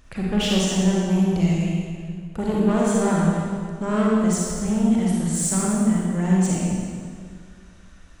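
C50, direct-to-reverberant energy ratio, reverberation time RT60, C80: −3.0 dB, −5.0 dB, 2.1 s, −1.0 dB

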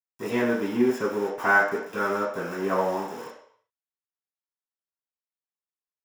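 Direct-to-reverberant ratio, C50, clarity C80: −8.5 dB, 4.0 dB, 7.5 dB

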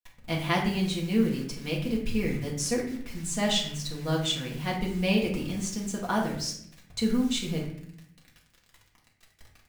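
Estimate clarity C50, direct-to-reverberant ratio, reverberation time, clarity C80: 6.0 dB, −3.5 dB, 0.70 s, 9.0 dB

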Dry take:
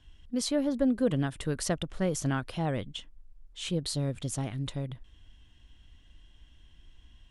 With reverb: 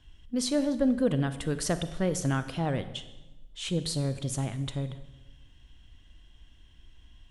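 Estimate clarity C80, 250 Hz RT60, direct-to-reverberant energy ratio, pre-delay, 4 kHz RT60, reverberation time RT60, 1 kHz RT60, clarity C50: 14.5 dB, 1.3 s, 11.0 dB, 30 ms, 0.95 s, 1.1 s, 1.0 s, 12.5 dB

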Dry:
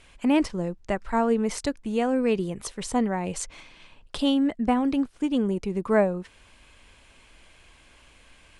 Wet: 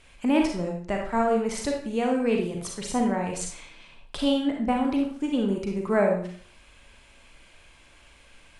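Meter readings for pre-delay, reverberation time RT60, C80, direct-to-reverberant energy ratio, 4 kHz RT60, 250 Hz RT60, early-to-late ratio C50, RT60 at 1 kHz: 34 ms, 0.50 s, 8.5 dB, 0.5 dB, 0.45 s, 0.45 s, 4.0 dB, 0.50 s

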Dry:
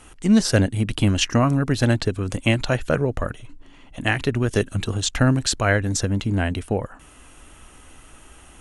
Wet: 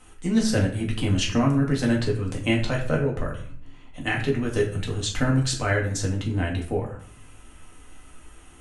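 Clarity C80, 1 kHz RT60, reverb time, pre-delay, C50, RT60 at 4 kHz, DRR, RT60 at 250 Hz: 12.0 dB, 0.55 s, 0.55 s, 4 ms, 8.0 dB, 0.40 s, −2.0 dB, 0.80 s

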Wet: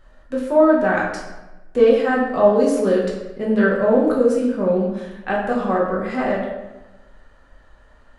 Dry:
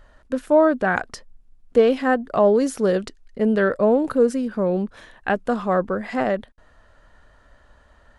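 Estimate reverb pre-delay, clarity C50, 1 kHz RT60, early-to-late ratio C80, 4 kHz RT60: 5 ms, 3.0 dB, 1.0 s, 5.0 dB, 0.75 s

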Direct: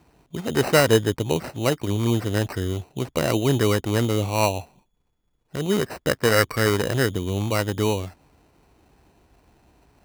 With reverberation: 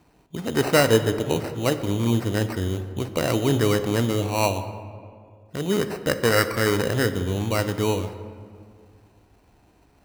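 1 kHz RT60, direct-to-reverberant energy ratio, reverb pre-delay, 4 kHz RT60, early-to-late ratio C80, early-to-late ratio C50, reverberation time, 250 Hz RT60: 2.0 s, 9.0 dB, 3 ms, 1.1 s, 12.0 dB, 11.0 dB, 2.1 s, 2.5 s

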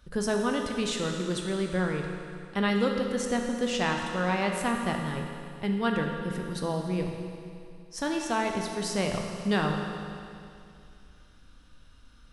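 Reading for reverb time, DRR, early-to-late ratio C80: 2.5 s, 1.5 dB, 4.5 dB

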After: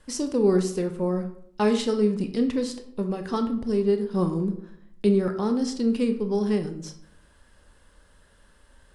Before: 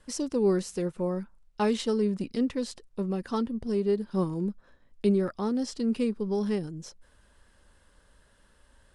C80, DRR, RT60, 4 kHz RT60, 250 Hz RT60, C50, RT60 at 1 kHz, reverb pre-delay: 13.5 dB, 6.5 dB, 0.65 s, 0.40 s, 0.85 s, 10.5 dB, 0.65 s, 20 ms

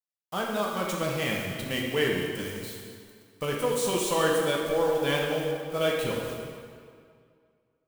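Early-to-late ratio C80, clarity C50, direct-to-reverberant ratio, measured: 2.5 dB, 0.5 dB, −2.5 dB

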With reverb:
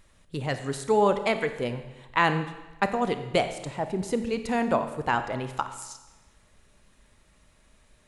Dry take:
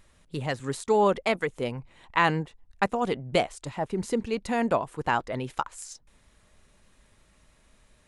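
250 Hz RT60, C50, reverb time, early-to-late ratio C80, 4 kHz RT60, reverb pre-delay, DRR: 1.1 s, 10.5 dB, 1.1 s, 11.5 dB, 1.1 s, 30 ms, 9.0 dB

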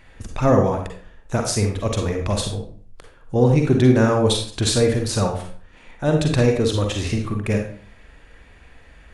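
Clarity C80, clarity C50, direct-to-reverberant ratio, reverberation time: 10.0 dB, 4.5 dB, 2.5 dB, 0.45 s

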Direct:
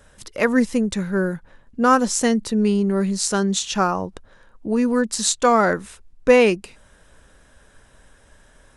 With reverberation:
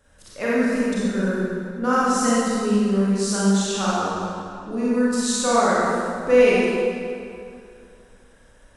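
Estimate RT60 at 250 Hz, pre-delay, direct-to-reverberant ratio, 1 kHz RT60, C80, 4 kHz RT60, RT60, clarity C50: 2.6 s, 29 ms, −9.0 dB, 2.4 s, −2.5 dB, 1.8 s, 2.4 s, −6.0 dB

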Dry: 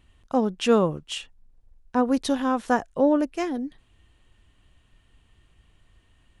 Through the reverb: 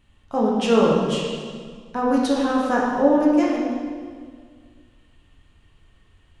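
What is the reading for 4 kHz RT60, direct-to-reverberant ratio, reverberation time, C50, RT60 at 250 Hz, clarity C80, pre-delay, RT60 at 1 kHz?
1.5 s, −4.5 dB, 1.9 s, 0.0 dB, 2.2 s, 1.5 dB, 6 ms, 1.8 s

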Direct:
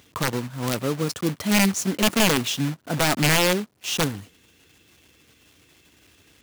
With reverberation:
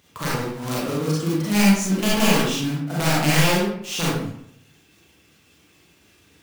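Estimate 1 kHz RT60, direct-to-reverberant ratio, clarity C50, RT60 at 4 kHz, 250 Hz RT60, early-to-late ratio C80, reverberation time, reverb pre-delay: 0.70 s, −7.0 dB, −2.0 dB, 0.45 s, 0.80 s, 3.0 dB, 0.70 s, 32 ms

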